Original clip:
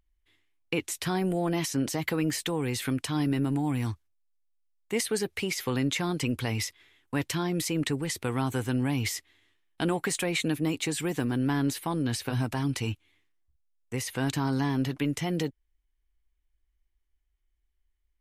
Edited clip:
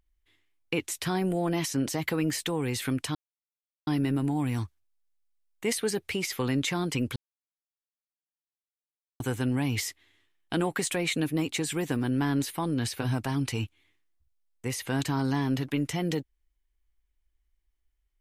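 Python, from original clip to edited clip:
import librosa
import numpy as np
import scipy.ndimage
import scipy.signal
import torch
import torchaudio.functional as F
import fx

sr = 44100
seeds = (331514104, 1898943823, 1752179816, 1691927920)

y = fx.edit(x, sr, fx.insert_silence(at_s=3.15, length_s=0.72),
    fx.silence(start_s=6.44, length_s=2.04), tone=tone)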